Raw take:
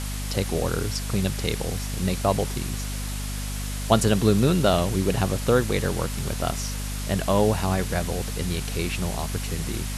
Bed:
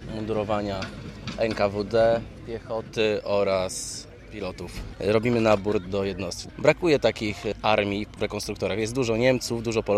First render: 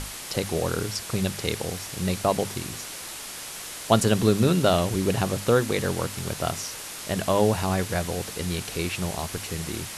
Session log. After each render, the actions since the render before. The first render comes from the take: notches 50/100/150/200/250 Hz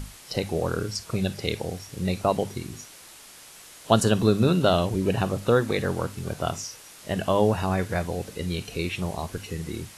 noise print and reduce 10 dB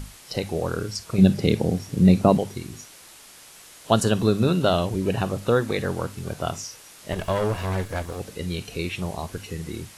1.18–2.38 bell 200 Hz +13.5 dB 2.2 oct; 7.12–8.2 minimum comb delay 1.8 ms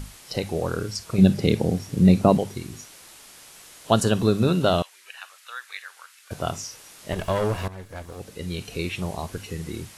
4.82–6.31 ladder high-pass 1300 Hz, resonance 30%; 7.68–8.75 fade in, from -16.5 dB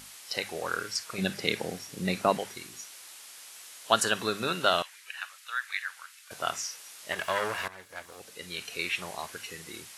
HPF 1300 Hz 6 dB/oct; dynamic EQ 1700 Hz, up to +8 dB, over -49 dBFS, Q 1.3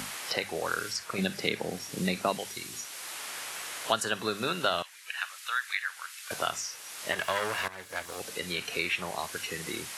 three-band squash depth 70%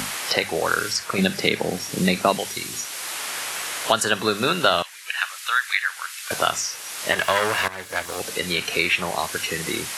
gain +9.5 dB; limiter -2 dBFS, peak gain reduction 3 dB

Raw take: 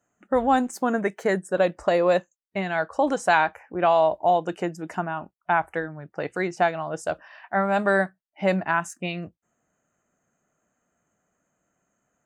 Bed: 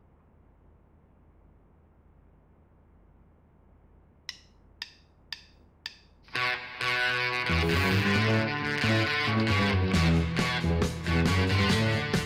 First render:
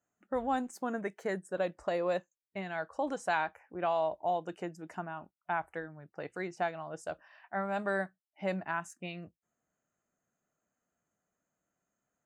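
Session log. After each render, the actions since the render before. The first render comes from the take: gain -11.5 dB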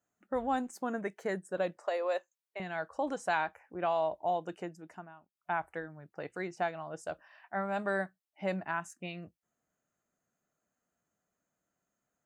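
1.77–2.6 HPF 420 Hz 24 dB/oct; 4.52–5.35 fade out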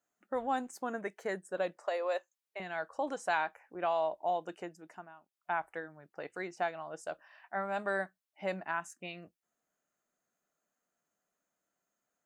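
bell 76 Hz -13.5 dB 2.5 oct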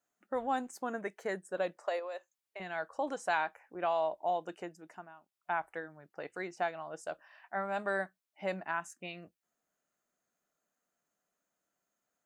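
1.99–2.61 compressor 3:1, threshold -40 dBFS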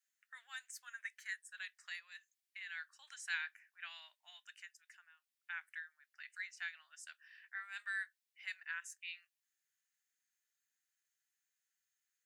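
Chebyshev high-pass 1700 Hz, order 4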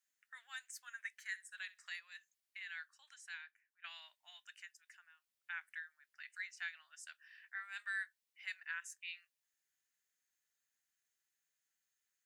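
1.26–1.94 flutter echo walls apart 11.2 m, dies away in 0.22 s; 2.66–3.84 fade out quadratic, to -15 dB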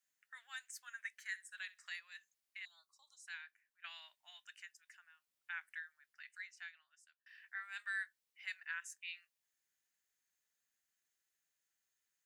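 2.65–3.27 elliptic band-stop 1100–3800 Hz; 5.92–7.26 fade out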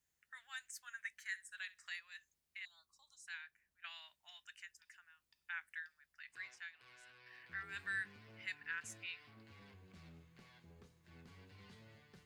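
add bed -35.5 dB

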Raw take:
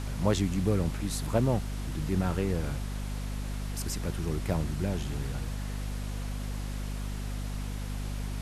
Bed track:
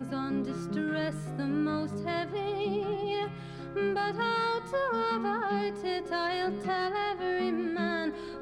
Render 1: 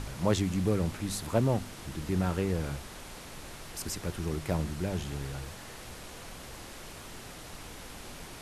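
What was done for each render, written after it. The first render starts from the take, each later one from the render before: de-hum 50 Hz, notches 5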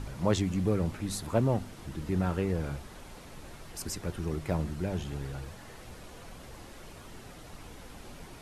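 denoiser 7 dB, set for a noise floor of -46 dBFS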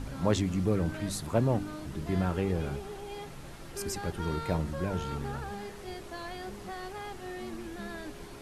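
add bed track -10.5 dB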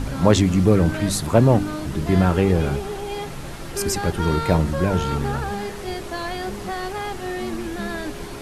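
gain +12 dB; limiter -2 dBFS, peak gain reduction 1.5 dB

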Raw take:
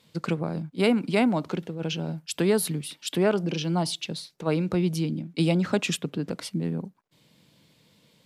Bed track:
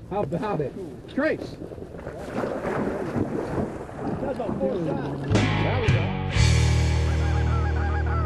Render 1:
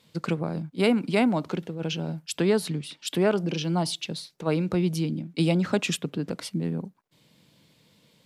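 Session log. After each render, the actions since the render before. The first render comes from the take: 2.38–3.05 LPF 7000 Hz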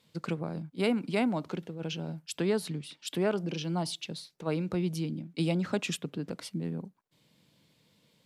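gain -6 dB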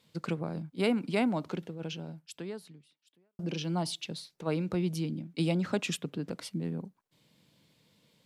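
1.65–3.39 fade out quadratic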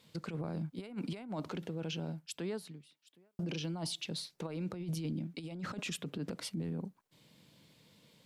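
negative-ratio compressor -34 dBFS, ratio -0.5; limiter -30 dBFS, peak gain reduction 10.5 dB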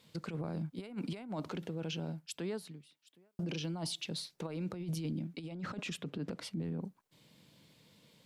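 5.36–6.82 high shelf 6400 Hz -9 dB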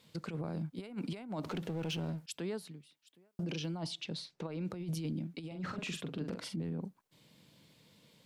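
1.43–2.26 power-law curve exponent 0.7; 3.77–4.65 air absorption 69 m; 5.47–6.56 doubler 44 ms -6 dB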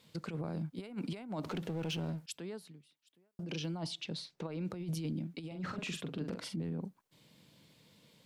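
2.38–3.51 gain -5 dB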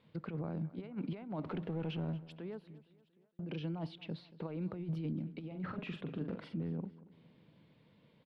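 air absorption 440 m; feedback echo 0.231 s, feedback 47%, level -19 dB

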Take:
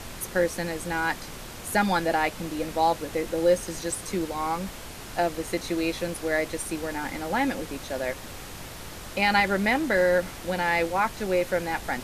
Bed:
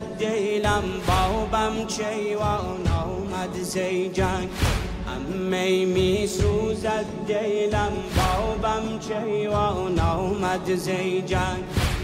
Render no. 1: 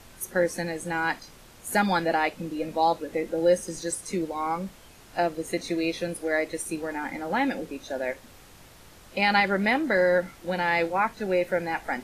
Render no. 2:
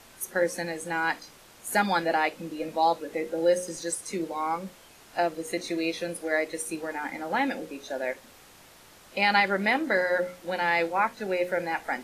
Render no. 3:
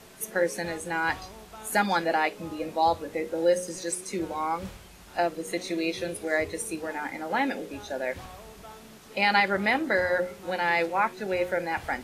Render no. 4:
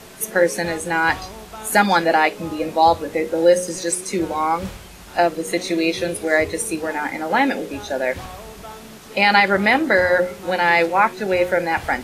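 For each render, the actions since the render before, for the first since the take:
noise print and reduce 11 dB
low shelf 140 Hz -12 dB; notches 60/120/180/240/300/360/420/480/540 Hz
add bed -22.5 dB
gain +9 dB; limiter -3 dBFS, peak gain reduction 1.5 dB

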